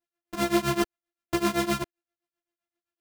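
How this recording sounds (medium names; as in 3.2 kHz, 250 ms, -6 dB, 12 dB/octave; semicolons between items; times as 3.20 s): a buzz of ramps at a fixed pitch in blocks of 128 samples; tremolo triangle 7.7 Hz, depth 100%; a shimmering, thickened sound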